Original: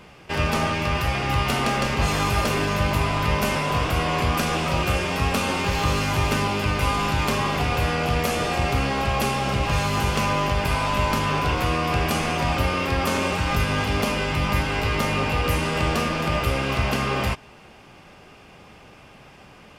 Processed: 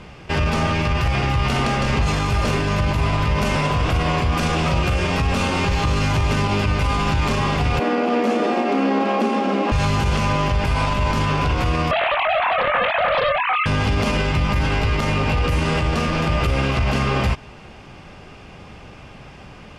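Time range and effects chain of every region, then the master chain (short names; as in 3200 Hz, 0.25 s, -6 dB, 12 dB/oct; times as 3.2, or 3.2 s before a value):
7.79–9.72 brick-wall FIR high-pass 200 Hz + tilt -3.5 dB/oct
11.91–13.66 sine-wave speech + doubler 22 ms -4 dB + Doppler distortion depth 0.4 ms
whole clip: LPF 7900 Hz 12 dB/oct; low shelf 150 Hz +8.5 dB; limiter -15.5 dBFS; gain +4.5 dB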